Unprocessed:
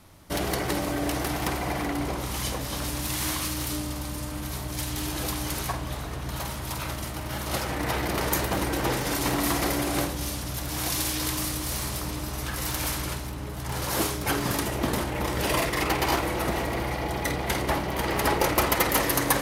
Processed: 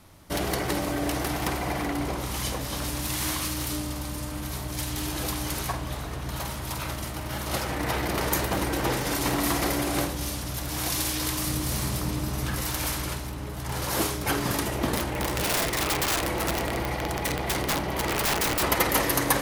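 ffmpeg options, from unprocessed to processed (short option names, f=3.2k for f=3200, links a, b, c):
-filter_complex "[0:a]asettb=1/sr,asplit=3[a][b][c];[a]atrim=end=11.474[d];[b]atrim=start=11.47:end=12.61,asetpts=PTS-STARTPTS,afade=t=in:d=0.004:c=qsin,afade=t=out:st=1.136:d=0.004:c=qsin,equalizer=f=160:w=0.62:g=6.5[e];[c]atrim=start=12.606[f];[d][e]acrossfade=d=0.004:c1=hsin:c2=qsin[g];[g][f]acrossfade=d=0.004:c1=qsin:c2=hsin,asettb=1/sr,asplit=3[h][i][j];[h]atrim=end=14.964[k];[i]atrim=start=14.96:end=18.63,asetpts=PTS-STARTPTS,afade=t=in:d=0.004:c=qsin,afade=t=out:st=3.666:d=0.004:c=qsin,aeval=exprs='(mod(8.91*val(0)+1,2)-1)/8.91':c=same[l];[j]atrim=start=18.626[m];[k][l]acrossfade=d=0.004:c1=hsin:c2=qsin[n];[n][m]acrossfade=d=0.004:c1=qsin:c2=hsin"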